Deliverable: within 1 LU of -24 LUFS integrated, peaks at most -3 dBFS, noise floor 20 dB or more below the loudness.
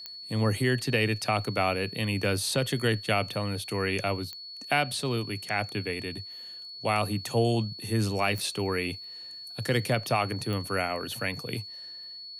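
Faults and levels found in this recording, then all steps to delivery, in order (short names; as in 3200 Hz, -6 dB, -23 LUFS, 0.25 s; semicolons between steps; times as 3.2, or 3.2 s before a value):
clicks 4; steady tone 4400 Hz; tone level -40 dBFS; loudness -29.0 LUFS; peak -11.0 dBFS; loudness target -24.0 LUFS
-> de-click; notch 4400 Hz, Q 30; gain +5 dB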